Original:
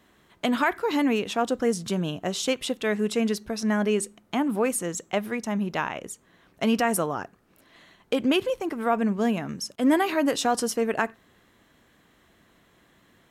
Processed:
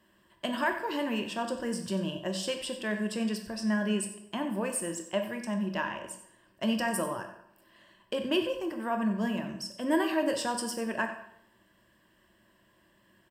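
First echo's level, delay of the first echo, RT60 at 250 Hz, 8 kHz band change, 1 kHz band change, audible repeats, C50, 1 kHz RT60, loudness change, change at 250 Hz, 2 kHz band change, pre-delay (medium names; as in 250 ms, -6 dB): -13.5 dB, 93 ms, 0.70 s, -5.0 dB, -6.5 dB, 1, 7.5 dB, 0.75 s, -6.0 dB, -5.5 dB, -4.0 dB, 13 ms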